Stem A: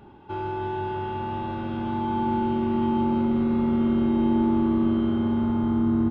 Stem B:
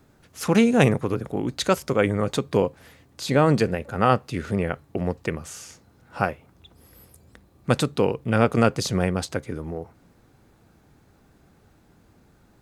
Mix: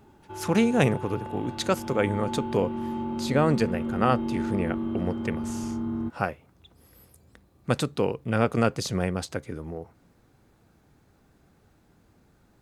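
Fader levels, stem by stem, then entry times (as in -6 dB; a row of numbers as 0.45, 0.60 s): -8.0, -4.0 dB; 0.00, 0.00 s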